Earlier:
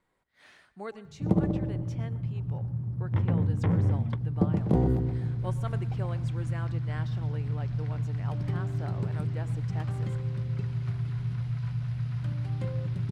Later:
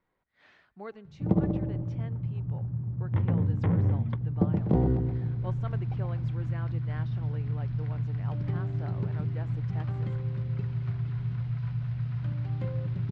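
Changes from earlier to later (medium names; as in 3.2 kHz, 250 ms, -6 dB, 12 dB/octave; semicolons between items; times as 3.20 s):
speech: send -10.5 dB; master: add distance through air 170 m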